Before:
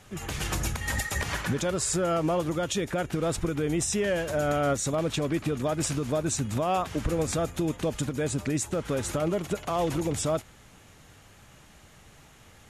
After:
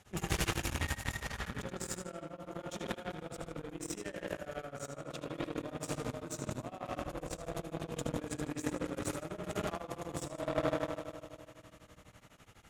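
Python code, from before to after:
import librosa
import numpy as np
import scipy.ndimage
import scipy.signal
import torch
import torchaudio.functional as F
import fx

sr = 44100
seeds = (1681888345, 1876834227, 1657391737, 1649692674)

y = fx.rev_spring(x, sr, rt60_s=3.2, pass_ms=(50,), chirp_ms=60, drr_db=-0.5)
y = fx.over_compress(y, sr, threshold_db=-31.0, ratio=-1.0)
y = fx.echo_feedback(y, sr, ms=77, feedback_pct=47, wet_db=-7.5)
y = fx.cheby_harmonics(y, sr, harmonics=(7,), levels_db=(-20,), full_scale_db=-12.5)
y = y * np.abs(np.cos(np.pi * 12.0 * np.arange(len(y)) / sr))
y = y * 10.0 ** (-2.0 / 20.0)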